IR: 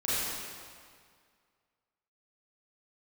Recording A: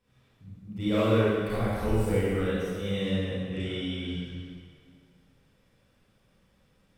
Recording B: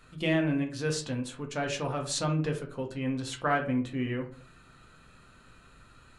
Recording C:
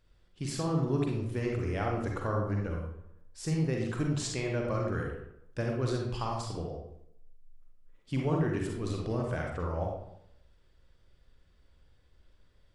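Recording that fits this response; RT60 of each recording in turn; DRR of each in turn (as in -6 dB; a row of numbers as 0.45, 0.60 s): A; 2.0, 0.45, 0.75 s; -11.0, 2.0, -0.5 dB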